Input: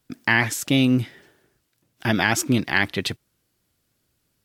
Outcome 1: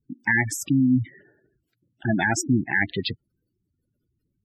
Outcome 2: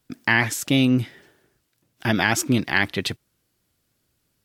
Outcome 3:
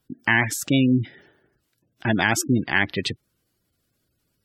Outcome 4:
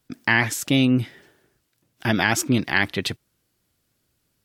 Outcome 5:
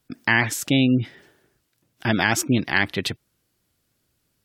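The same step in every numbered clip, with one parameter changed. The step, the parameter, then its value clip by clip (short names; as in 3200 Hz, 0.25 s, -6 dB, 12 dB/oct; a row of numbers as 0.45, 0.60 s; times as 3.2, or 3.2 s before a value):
spectral gate, under each frame's peak: -10, -60, -20, -50, -35 dB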